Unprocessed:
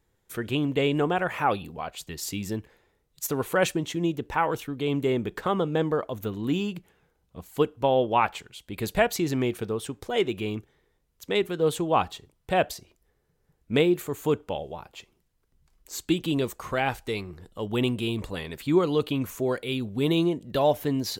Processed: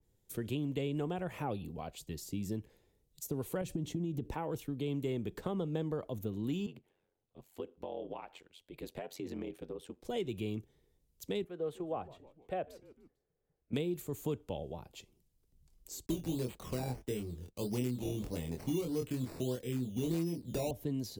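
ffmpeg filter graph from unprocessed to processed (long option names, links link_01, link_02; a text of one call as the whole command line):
ffmpeg -i in.wav -filter_complex "[0:a]asettb=1/sr,asplit=3[link_01][link_02][link_03];[link_01]atrim=end=3.614[link_04];[link_02]atrim=start=3.61:end=4.34,asetpts=PTS-STARTPTS,afade=type=in:duration=0.004:curve=qsin,afade=type=out:start_time=0.726:duration=0.004:curve=qsin,lowshelf=frequency=420:gain=10.5,acompressor=threshold=-25dB:ratio=6:attack=3.2:release=140:knee=1:detection=peak[link_05];[link_03]atrim=start=4.336[link_06];[link_04][link_05]acrossfade=duration=0.004:curve1=hsin:curve2=qsin[link_07];[link_07][link_06]acrossfade=duration=0.004:curve1=qsin:curve2=hsin,asettb=1/sr,asplit=3[link_08][link_09][link_10];[link_08]atrim=end=6.664[link_11];[link_09]atrim=start=6.66:end=10.05,asetpts=PTS-STARTPTS,afade=type=in:duration=0.004:curve=qsin,afade=type=out:start_time=3.386:duration=0.004:curve=qsin,bass=frequency=250:gain=-15,treble=frequency=4000:gain=-13,acompressor=threshold=-30dB:ratio=3:attack=3.2:release=140:knee=1:detection=peak,aeval=exprs='val(0)*sin(2*PI*45*n/s)':channel_layout=same[link_12];[link_10]atrim=start=10.046[link_13];[link_11][link_12]acrossfade=duration=0.004:curve1=hsin:curve2=qsin[link_14];[link_14][link_13]acrossfade=duration=0.004:curve1=qsin:curve2=hsin,asettb=1/sr,asplit=3[link_15][link_16][link_17];[link_15]atrim=end=11.444[link_18];[link_16]atrim=start=11.44:end=13.73,asetpts=PTS-STARTPTS,afade=type=in:duration=0.004:curve=qsin,afade=type=out:start_time=2.286:duration=0.004:curve=qsin,acrossover=split=410 2200:gain=0.2 1 0.1[link_19][link_20][link_21];[link_19][link_20][link_21]amix=inputs=3:normalize=0,bandreject=frequency=930:width=7.9,asplit=4[link_22][link_23][link_24][link_25];[link_23]adelay=149,afreqshift=-110,volume=-23.5dB[link_26];[link_24]adelay=298,afreqshift=-220,volume=-29.2dB[link_27];[link_25]adelay=447,afreqshift=-330,volume=-34.9dB[link_28];[link_22][link_26][link_27][link_28]amix=inputs=4:normalize=0,atrim=end_sample=100989[link_29];[link_17]atrim=start=13.726[link_30];[link_18][link_29]acrossfade=duration=0.004:curve1=hsin:curve2=qsin[link_31];[link_31][link_30]acrossfade=duration=0.004:curve1=qsin:curve2=hsin,asettb=1/sr,asplit=3[link_32][link_33][link_34];[link_32]atrim=end=16.064[link_35];[link_33]atrim=start=16.06:end=20.71,asetpts=PTS-STARTPTS,afade=type=in:duration=0.004:curve=qsin,afade=type=out:start_time=4.646:duration=0.004:curve=qsin,acrusher=samples=11:mix=1:aa=0.000001:lfo=1:lforange=6.6:lforate=1.6,agate=range=-33dB:threshold=-45dB:ratio=3:release=100:detection=peak,asplit=2[link_36][link_37];[link_37]adelay=24,volume=-2.5dB[link_38];[link_36][link_38]amix=inputs=2:normalize=0,atrim=end_sample=205065[link_39];[link_34]atrim=start=20.706[link_40];[link_35][link_39]acrossfade=duration=0.004:curve1=hsin:curve2=qsin[link_41];[link_41][link_40]acrossfade=duration=0.004:curve1=qsin:curve2=hsin,equalizer=frequency=1400:width_type=o:width=2.1:gain=-14.5,acrossover=split=150|770[link_42][link_43][link_44];[link_42]acompressor=threshold=-42dB:ratio=4[link_45];[link_43]acompressor=threshold=-35dB:ratio=4[link_46];[link_44]acompressor=threshold=-43dB:ratio=4[link_47];[link_45][link_46][link_47]amix=inputs=3:normalize=0,adynamicequalizer=threshold=0.00141:dfrequency=2600:dqfactor=0.7:tfrequency=2600:tqfactor=0.7:attack=5:release=100:ratio=0.375:range=2:mode=cutabove:tftype=highshelf,volume=-1dB" out.wav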